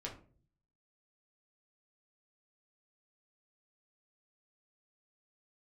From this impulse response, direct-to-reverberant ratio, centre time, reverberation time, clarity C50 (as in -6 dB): -2.5 dB, 20 ms, 0.45 s, 9.5 dB